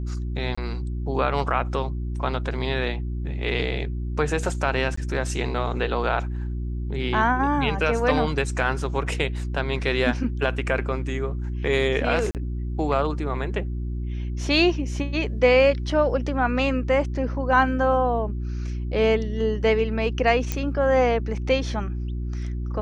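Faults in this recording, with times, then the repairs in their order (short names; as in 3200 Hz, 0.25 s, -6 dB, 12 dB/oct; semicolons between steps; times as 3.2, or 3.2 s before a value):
hum 60 Hz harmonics 6 -28 dBFS
0.55–0.57 gap 25 ms
4.96–4.97 gap 14 ms
12.31–12.35 gap 38 ms
20.52 pop -10 dBFS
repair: de-click; de-hum 60 Hz, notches 6; interpolate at 0.55, 25 ms; interpolate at 4.96, 14 ms; interpolate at 12.31, 38 ms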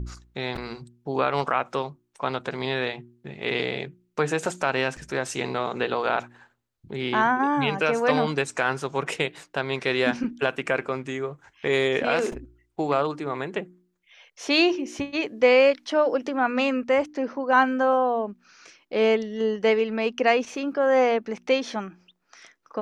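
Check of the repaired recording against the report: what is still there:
none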